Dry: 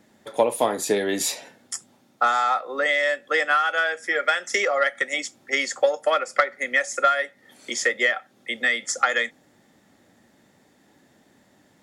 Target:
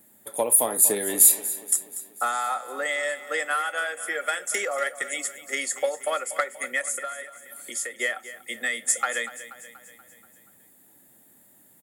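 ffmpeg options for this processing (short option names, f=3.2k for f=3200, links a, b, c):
-filter_complex "[0:a]asettb=1/sr,asplit=3[a][b][c];[a]atrim=end=6.814[d];[b]atrim=start=6.81:end=8,asetpts=PTS-STARTPTS,afade=t=in:d=0.004:c=qsin,afade=t=out:st=1.186:d=0.004:c=qsin,acompressor=threshold=-33dB:ratio=2[e];[c]atrim=start=7.996[f];[d][e]acrossfade=d=0.004:c1=hsin:c2=qsin[g];[g][f]acrossfade=d=0.004:c1=qsin:c2=hsin,aexciter=amount=15.2:drive=6.3:freq=8.3k,asplit=2[h][i];[i]aecho=0:1:240|480|720|960|1200|1440:0.188|0.105|0.0591|0.0331|0.0185|0.0104[j];[h][j]amix=inputs=2:normalize=0,volume=-6dB"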